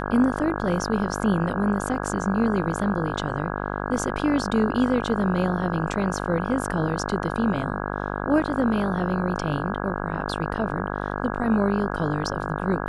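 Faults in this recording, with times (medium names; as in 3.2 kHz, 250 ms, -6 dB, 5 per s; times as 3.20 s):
buzz 50 Hz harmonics 33 -29 dBFS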